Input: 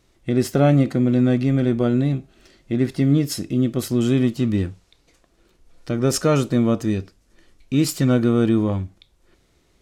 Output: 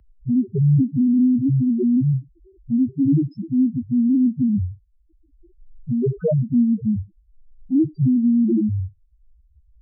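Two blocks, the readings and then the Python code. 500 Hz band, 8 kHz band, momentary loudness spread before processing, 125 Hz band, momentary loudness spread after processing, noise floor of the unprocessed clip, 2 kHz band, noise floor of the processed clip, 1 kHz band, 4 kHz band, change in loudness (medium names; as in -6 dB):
-7.0 dB, under -40 dB, 8 LU, -0.5 dB, 7 LU, -62 dBFS, under -25 dB, -59 dBFS, under -30 dB, under -35 dB, +0.5 dB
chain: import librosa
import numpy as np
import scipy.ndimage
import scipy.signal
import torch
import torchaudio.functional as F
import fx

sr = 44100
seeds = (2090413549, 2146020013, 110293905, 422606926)

y = fx.lowpass(x, sr, hz=1200.0, slope=6)
y = fx.spec_topn(y, sr, count=1)
y = fx.band_squash(y, sr, depth_pct=40)
y = F.gain(torch.from_numpy(y), 8.0).numpy()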